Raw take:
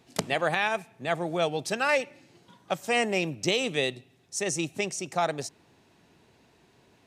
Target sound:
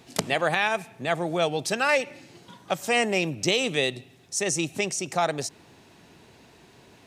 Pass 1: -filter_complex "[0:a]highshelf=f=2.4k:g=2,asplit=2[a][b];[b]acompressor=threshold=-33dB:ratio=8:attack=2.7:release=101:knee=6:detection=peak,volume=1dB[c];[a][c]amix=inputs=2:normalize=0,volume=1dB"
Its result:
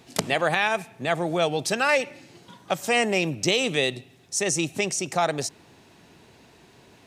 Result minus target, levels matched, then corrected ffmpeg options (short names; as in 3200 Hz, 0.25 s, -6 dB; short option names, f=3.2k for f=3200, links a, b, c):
compressor: peak gain reduction -7.5 dB
-filter_complex "[0:a]highshelf=f=2.4k:g=2,asplit=2[a][b];[b]acompressor=threshold=-41.5dB:ratio=8:attack=2.7:release=101:knee=6:detection=peak,volume=1dB[c];[a][c]amix=inputs=2:normalize=0,volume=1dB"